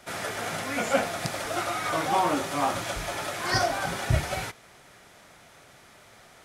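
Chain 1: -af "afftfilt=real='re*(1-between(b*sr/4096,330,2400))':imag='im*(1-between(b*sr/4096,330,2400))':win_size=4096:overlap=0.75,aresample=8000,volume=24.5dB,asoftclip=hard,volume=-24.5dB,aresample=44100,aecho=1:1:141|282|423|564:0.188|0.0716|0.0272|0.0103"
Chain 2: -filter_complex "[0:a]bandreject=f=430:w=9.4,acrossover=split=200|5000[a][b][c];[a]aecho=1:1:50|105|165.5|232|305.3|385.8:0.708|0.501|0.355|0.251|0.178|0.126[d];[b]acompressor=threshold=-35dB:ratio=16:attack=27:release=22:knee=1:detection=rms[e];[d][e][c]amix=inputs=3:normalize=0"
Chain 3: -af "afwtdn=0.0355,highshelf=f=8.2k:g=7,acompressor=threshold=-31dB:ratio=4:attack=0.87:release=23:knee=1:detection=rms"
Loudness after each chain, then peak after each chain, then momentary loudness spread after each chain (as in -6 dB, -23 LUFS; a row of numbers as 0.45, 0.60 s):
-36.5, -31.0, -35.5 LUFS; -22.0, -10.0, -24.5 dBFS; 7, 6, 4 LU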